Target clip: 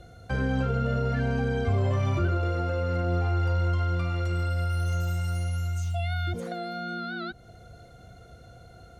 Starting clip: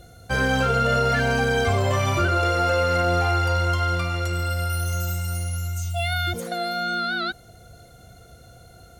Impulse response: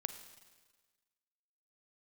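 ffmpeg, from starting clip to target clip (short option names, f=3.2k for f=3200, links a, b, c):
-filter_complex "[0:a]aemphasis=mode=reproduction:type=50fm,acrossover=split=380[a][b];[b]acompressor=threshold=-34dB:ratio=4[c];[a][c]amix=inputs=2:normalize=0,volume=-1.5dB"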